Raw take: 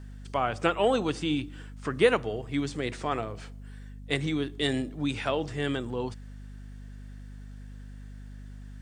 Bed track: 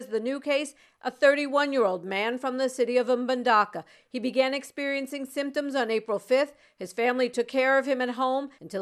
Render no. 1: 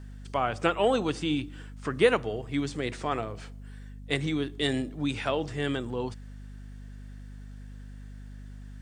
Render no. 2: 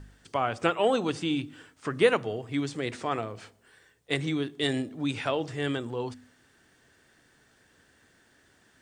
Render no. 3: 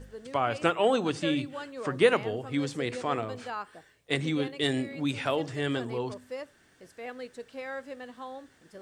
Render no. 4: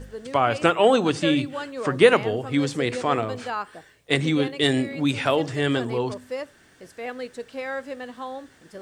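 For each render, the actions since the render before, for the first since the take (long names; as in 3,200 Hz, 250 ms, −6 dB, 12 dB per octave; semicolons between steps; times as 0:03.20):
no processing that can be heard
hum removal 50 Hz, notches 5
mix in bed track −15.5 dB
level +7 dB; brickwall limiter −2 dBFS, peak gain reduction 1.5 dB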